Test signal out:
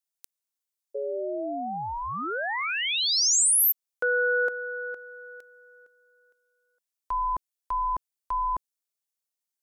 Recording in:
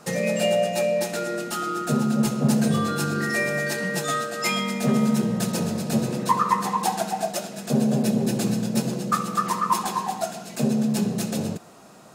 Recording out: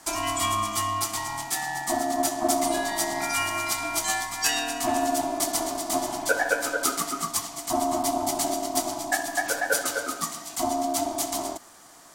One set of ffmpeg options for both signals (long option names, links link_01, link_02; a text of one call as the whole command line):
ffmpeg -i in.wav -af "aeval=exprs='val(0)*sin(2*PI*490*n/s)':channel_layout=same,bass=frequency=250:gain=-11,treble=frequency=4000:gain=9" out.wav